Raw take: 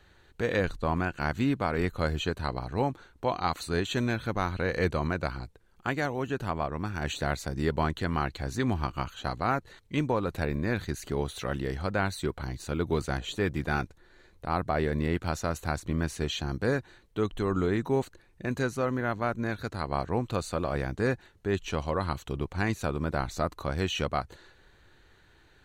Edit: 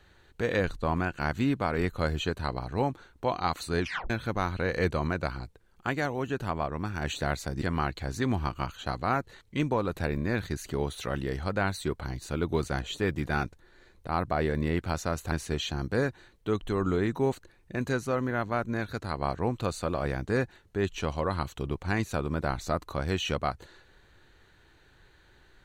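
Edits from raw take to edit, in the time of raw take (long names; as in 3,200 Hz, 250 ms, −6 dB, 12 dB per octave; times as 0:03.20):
0:03.80: tape stop 0.30 s
0:07.62–0:08.00: remove
0:15.70–0:16.02: remove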